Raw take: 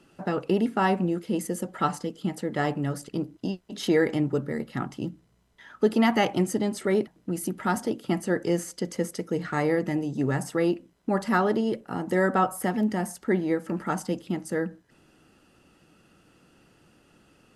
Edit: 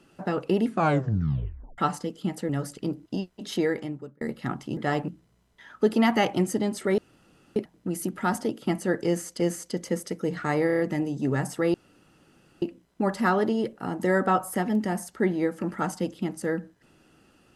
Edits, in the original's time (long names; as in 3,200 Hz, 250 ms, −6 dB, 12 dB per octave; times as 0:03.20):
0:00.67: tape stop 1.11 s
0:02.49–0:02.80: move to 0:05.08
0:03.68–0:04.52: fade out
0:06.98: splice in room tone 0.58 s
0:08.48–0:08.82: repeat, 2 plays
0:09.75: stutter 0.03 s, 5 plays
0:10.70: splice in room tone 0.88 s